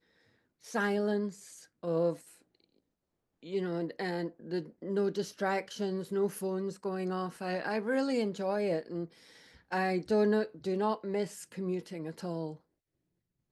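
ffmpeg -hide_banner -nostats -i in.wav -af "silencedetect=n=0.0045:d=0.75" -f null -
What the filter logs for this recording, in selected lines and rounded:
silence_start: 2.31
silence_end: 3.43 | silence_duration: 1.12
silence_start: 12.57
silence_end: 13.51 | silence_duration: 0.94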